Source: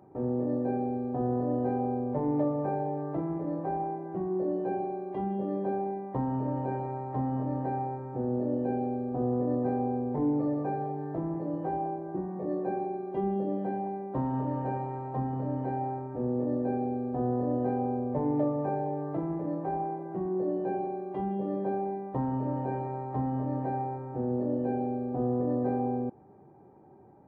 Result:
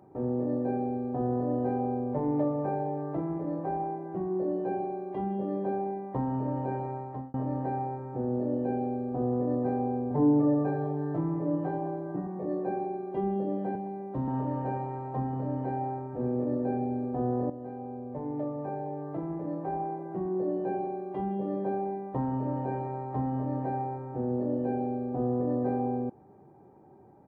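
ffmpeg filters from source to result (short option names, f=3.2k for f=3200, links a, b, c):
-filter_complex "[0:a]asettb=1/sr,asplit=3[a][b][c];[a]atrim=end=10.104[d];[b]atrim=start=10.1:end=12.27,asetpts=PTS-STARTPTS,afade=t=in:d=0.004:c=qsin,afade=t=out:st=2.166:d=0.004:c=qsin,aecho=1:1:6.9:0.8,atrim=end_sample=95697[e];[c]atrim=start=12.266[f];[d][e]acrossfade=d=0.004:c1=hsin:c2=qsin[g];[g][f]acrossfade=d=0.004:c1=qsin:c2=hsin,asettb=1/sr,asplit=3[h][i][j];[h]atrim=end=13.754[k];[i]atrim=start=13.75:end=14.28,asetpts=PTS-STARTPTS,afade=t=in:d=0.004:c=qsin,afade=t=out:st=0.526:d=0.004:c=qsin,acrossover=split=360|3000[l][m][n];[m]acompressor=threshold=-40dB:ratio=3:attack=3.2:release=140:knee=2.83:detection=peak[o];[l][o][n]amix=inputs=3:normalize=0[p];[j]atrim=start=14.276[q];[k][p]acrossfade=d=0.004:c1=hsin:c2=qsin[r];[r][q]acrossfade=d=0.004:c1=qsin:c2=hsin,asplit=2[s][t];[t]afade=t=in:st=15.57:d=0.01,afade=t=out:st=16.49:d=0.01,aecho=0:1:560|1120|1680|2240:0.237137|0.106712|0.0480203|0.0216091[u];[s][u]amix=inputs=2:normalize=0,asplit=3[v][w][x];[v]atrim=end=7.34,asetpts=PTS-STARTPTS,afade=t=out:st=6.83:d=0.51:c=qsin[y];[w]atrim=start=7.34:end=17.5,asetpts=PTS-STARTPTS,afade=t=in:d=0.004:c=hsin,afade=t=out:st=10.156:d=0.004:c=hsin:silence=0.237137[z];[x]atrim=start=17.5,asetpts=PTS-STARTPTS,afade=t=in:d=2.55:silence=0.237137[aa];[y][z][aa]concat=n=3:v=0:a=1"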